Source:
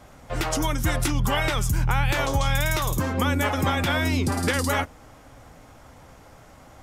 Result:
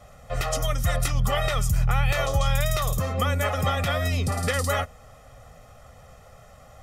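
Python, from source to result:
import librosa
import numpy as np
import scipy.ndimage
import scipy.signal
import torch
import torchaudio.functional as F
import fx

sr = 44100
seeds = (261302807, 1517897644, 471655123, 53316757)

y = x + 0.94 * np.pad(x, (int(1.6 * sr / 1000.0), 0))[:len(x)]
y = F.gain(torch.from_numpy(y), -4.0).numpy()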